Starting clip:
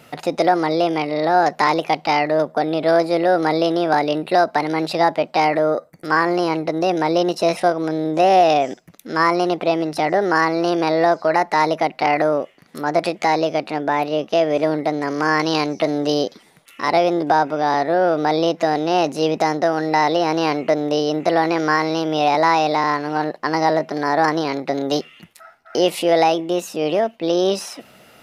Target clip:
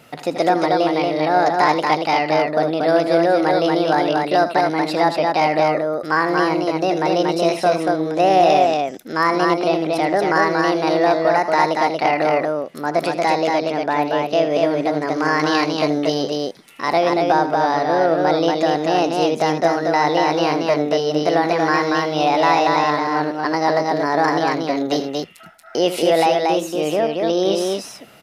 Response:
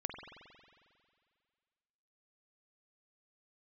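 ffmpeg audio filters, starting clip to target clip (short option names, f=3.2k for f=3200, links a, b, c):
-af "aecho=1:1:78.72|233.2:0.251|0.708,volume=-1dB"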